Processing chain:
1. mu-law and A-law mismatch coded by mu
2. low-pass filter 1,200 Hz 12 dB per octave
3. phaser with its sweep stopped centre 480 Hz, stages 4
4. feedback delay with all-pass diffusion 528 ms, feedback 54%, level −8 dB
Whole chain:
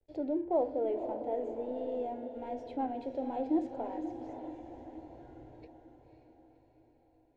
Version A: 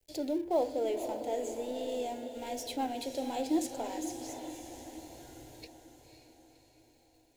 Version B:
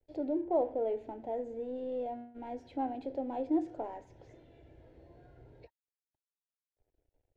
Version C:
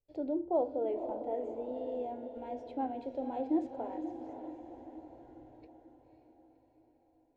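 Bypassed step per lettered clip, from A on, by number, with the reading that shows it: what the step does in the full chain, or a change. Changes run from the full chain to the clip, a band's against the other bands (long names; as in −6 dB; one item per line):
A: 2, 2 kHz band +9.5 dB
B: 4, echo-to-direct ratio −6.5 dB to none audible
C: 1, distortion level −20 dB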